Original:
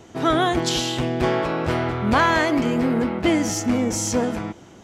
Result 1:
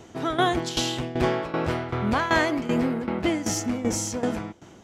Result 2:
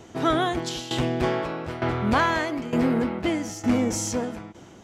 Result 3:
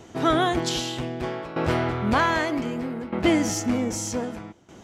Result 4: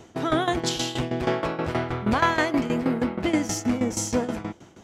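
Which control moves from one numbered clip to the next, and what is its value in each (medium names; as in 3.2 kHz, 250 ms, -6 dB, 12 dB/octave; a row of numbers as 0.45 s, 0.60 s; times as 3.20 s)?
tremolo, rate: 2.6 Hz, 1.1 Hz, 0.64 Hz, 6.3 Hz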